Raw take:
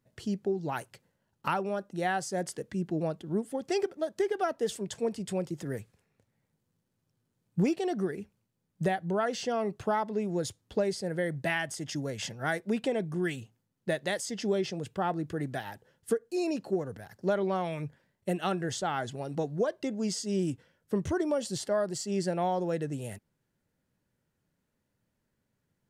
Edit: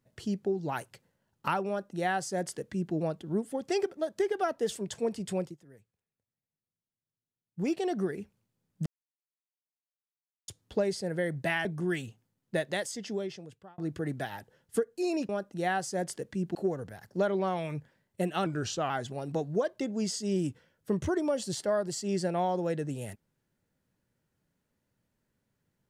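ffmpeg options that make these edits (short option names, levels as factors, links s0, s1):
-filter_complex "[0:a]asplit=11[s0][s1][s2][s3][s4][s5][s6][s7][s8][s9][s10];[s0]atrim=end=5.57,asetpts=PTS-STARTPTS,afade=t=out:st=5.41:d=0.16:silence=0.1[s11];[s1]atrim=start=5.57:end=7.56,asetpts=PTS-STARTPTS,volume=0.1[s12];[s2]atrim=start=7.56:end=8.86,asetpts=PTS-STARTPTS,afade=t=in:d=0.16:silence=0.1,afade=t=out:st=1.296:d=0.004:c=hsin[s13];[s3]atrim=start=8.86:end=10.48,asetpts=PTS-STARTPTS,volume=0[s14];[s4]atrim=start=10.48:end=11.652,asetpts=PTS-STARTPTS,afade=t=in:d=0.004:c=hsin[s15];[s5]atrim=start=12.988:end=15.12,asetpts=PTS-STARTPTS,afade=t=out:st=1.012:d=1.12[s16];[s6]atrim=start=15.12:end=16.632,asetpts=PTS-STARTPTS,afade=t=in:d=0.004:c=hsin[s17];[s7]atrim=start=1.678:end=2.942[s18];[s8]atrim=start=16.628:end=18.544[s19];[s9]atrim=start=18.54:end=18.93,asetpts=PTS-STARTPTS,asetrate=39249,aresample=44100[s20];[s10]atrim=start=18.926[s21];[s11][s12][s13][s14][s15]concat=n=5:v=0:a=1[s22];[s16][s17]concat=n=2:v=0:a=1[s23];[s22][s23]acrossfade=d=0.004:c1=hsin:c2=hsin[s24];[s24][s18]acrossfade=d=0.004:c1=hsin:c2=hsin[s25];[s25][s19]acrossfade=d=0.004:c1=hsin:c2=hsin[s26];[s26][s20]acrossfade=d=0.004:c1=hsin:c2=hsin[s27];[s27][s21]acrossfade=d=0.004:c1=hsin:c2=hsin"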